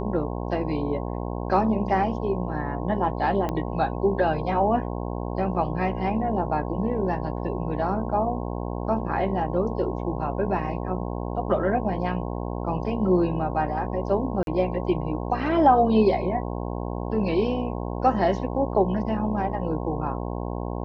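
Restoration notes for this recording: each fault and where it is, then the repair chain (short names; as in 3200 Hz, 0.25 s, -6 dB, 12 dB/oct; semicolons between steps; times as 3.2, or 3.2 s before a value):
buzz 60 Hz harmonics 18 -30 dBFS
3.49 pop -15 dBFS
14.43–14.47 gap 42 ms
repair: de-click; de-hum 60 Hz, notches 18; interpolate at 14.43, 42 ms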